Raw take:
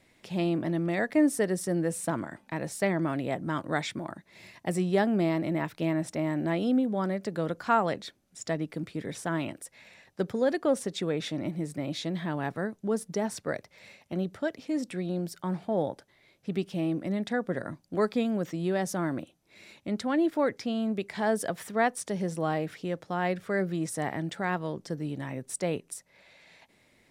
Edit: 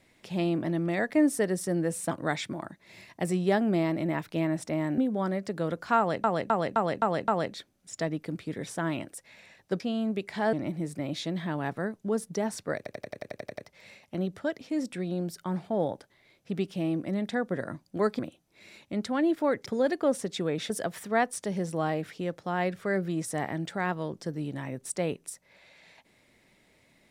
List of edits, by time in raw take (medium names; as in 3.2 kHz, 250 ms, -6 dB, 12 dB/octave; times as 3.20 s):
2.11–3.57 s: delete
6.44–6.76 s: delete
7.76–8.02 s: loop, 6 plays
10.28–11.32 s: swap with 20.61–21.34 s
13.56 s: stutter 0.09 s, 10 plays
18.17–19.14 s: delete